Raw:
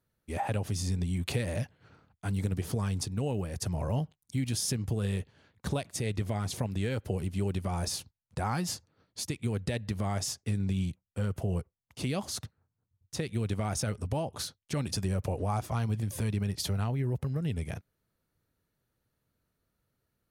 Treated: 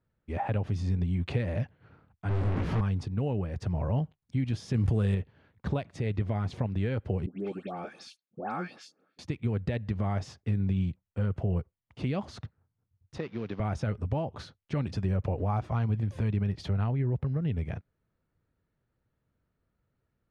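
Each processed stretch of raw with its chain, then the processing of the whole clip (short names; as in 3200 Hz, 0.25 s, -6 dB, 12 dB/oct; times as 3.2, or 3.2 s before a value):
2.29–2.81 infinite clipping + high shelf 2600 Hz -7.5 dB + doubler 18 ms -2.5 dB
4.74–5.15 block floating point 7-bit + bell 9000 Hz +12 dB 0.94 oct + fast leveller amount 100%
7.26–9.19 HPF 210 Hz 24 dB/oct + notch comb 990 Hz + dispersion highs, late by 0.148 s, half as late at 1600 Hz
13.18–13.6 CVSD 32 kbps + HPF 220 Hz
whole clip: LPF 2500 Hz 12 dB/oct; low shelf 190 Hz +3.5 dB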